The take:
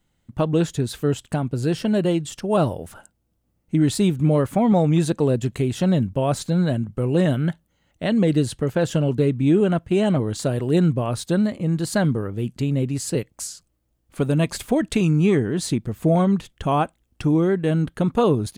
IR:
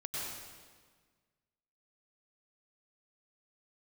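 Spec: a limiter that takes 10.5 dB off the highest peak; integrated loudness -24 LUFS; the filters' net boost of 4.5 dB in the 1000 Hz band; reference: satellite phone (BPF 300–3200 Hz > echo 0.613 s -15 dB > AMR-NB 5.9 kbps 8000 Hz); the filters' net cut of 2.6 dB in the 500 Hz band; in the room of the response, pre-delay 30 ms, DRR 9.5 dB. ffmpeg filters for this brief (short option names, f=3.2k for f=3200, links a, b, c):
-filter_complex "[0:a]equalizer=f=500:t=o:g=-4.5,equalizer=f=1k:t=o:g=8,alimiter=limit=-16dB:level=0:latency=1,asplit=2[a][b];[1:a]atrim=start_sample=2205,adelay=30[c];[b][c]afir=irnorm=-1:irlink=0,volume=-12dB[d];[a][d]amix=inputs=2:normalize=0,highpass=300,lowpass=3.2k,aecho=1:1:613:0.178,volume=7dB" -ar 8000 -c:a libopencore_amrnb -b:a 5900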